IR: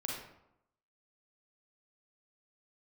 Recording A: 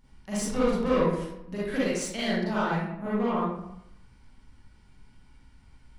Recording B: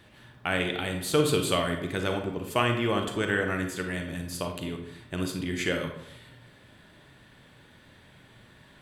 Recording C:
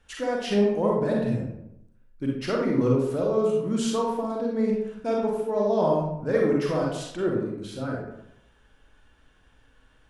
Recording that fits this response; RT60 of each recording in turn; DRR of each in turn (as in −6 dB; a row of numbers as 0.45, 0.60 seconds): C; 0.80, 0.80, 0.80 seconds; −9.0, 4.0, −2.5 decibels